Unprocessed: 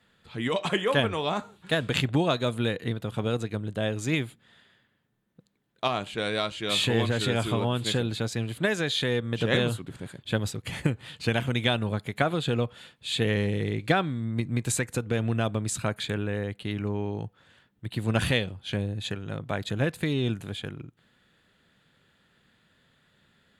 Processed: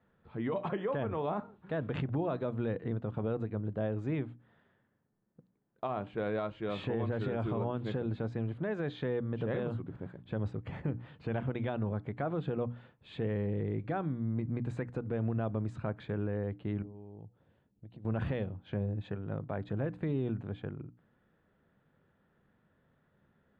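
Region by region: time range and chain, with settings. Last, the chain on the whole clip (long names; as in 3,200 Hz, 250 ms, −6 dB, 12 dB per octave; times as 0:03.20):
0:16.82–0:18.05: parametric band 1,400 Hz −10.5 dB 1.6 octaves + downward compressor 12 to 1, threshold −41 dBFS
whole clip: low-pass filter 1,100 Hz 12 dB per octave; mains-hum notches 60/120/180/240/300 Hz; brickwall limiter −22.5 dBFS; level −2.5 dB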